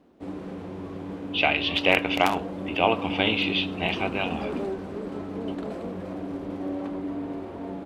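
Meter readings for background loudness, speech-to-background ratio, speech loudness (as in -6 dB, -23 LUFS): -33.5 LUFS, 8.5 dB, -25.0 LUFS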